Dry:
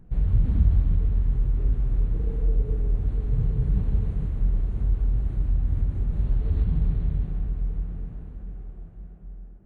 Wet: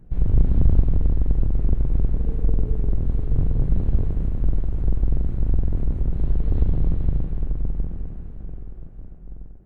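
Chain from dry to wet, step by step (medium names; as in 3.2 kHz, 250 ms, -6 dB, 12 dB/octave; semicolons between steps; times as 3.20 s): octave divider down 2 oct, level +3 dB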